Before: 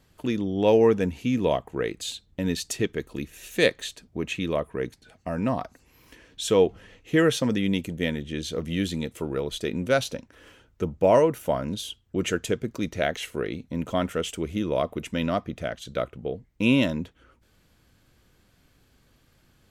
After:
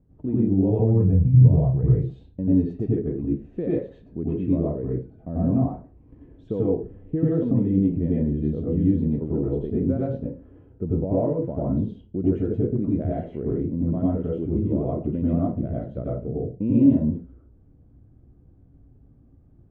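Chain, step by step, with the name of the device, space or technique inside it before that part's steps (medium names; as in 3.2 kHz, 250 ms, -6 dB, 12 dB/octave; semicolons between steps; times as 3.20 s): 0.70–1.97 s: resonant low shelf 190 Hz +9 dB, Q 3; television next door (compression 3:1, threshold -23 dBFS, peak gain reduction 7.5 dB; low-pass 330 Hz 12 dB/octave; reverberation RT60 0.30 s, pre-delay 87 ms, DRR -6 dB); trim +2.5 dB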